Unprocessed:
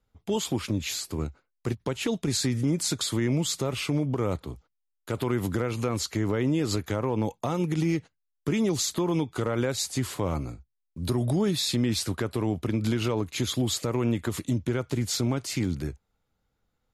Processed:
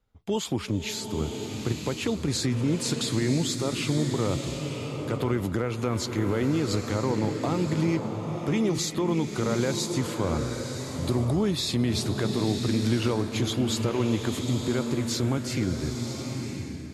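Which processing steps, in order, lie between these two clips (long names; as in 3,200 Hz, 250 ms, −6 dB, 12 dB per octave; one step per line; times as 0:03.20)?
high-shelf EQ 9,200 Hz −8 dB
slow-attack reverb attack 990 ms, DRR 4 dB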